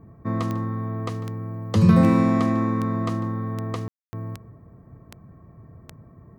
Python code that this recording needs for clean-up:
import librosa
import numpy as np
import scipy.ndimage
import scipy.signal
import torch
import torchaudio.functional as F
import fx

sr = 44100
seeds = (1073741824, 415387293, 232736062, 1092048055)

y = fx.fix_declick_ar(x, sr, threshold=10.0)
y = fx.fix_ambience(y, sr, seeds[0], print_start_s=4.67, print_end_s=5.17, start_s=3.88, end_s=4.13)
y = fx.fix_echo_inverse(y, sr, delay_ms=148, level_db=-17.0)